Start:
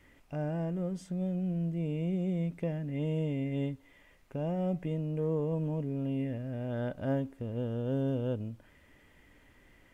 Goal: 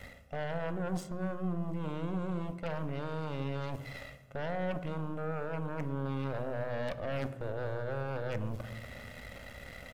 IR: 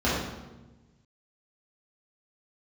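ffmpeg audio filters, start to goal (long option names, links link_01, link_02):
-filter_complex "[0:a]highpass=54,equalizer=frequency=570:width=5.2:gain=4,aecho=1:1:1.5:0.76,areverse,acompressor=threshold=-46dB:ratio=6,areverse,aeval=exprs='0.0126*(cos(1*acos(clip(val(0)/0.0126,-1,1)))-cos(1*PI/2))+0.00251*(cos(5*acos(clip(val(0)/0.0126,-1,1)))-cos(5*PI/2))+0.00398*(cos(6*acos(clip(val(0)/0.0126,-1,1)))-cos(6*PI/2))+0.00141*(cos(7*acos(clip(val(0)/0.0126,-1,1)))-cos(7*PI/2))':channel_layout=same,asplit=2[link_01][link_02];[1:a]atrim=start_sample=2205[link_03];[link_02][link_03]afir=irnorm=-1:irlink=0,volume=-25dB[link_04];[link_01][link_04]amix=inputs=2:normalize=0,volume=7.5dB"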